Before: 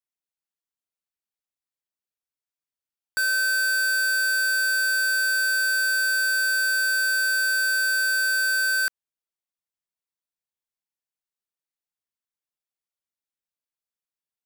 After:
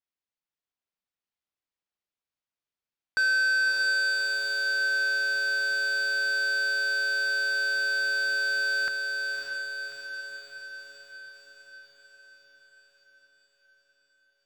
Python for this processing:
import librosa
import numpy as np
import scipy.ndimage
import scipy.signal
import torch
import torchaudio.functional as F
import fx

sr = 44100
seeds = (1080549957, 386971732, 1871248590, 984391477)

y = fx.high_shelf(x, sr, hz=4300.0, db=6.5)
y = fx.rider(y, sr, range_db=10, speed_s=0.5)
y = fx.air_absorb(y, sr, metres=170.0)
y = fx.echo_diffused(y, sr, ms=599, feedback_pct=62, wet_db=-4)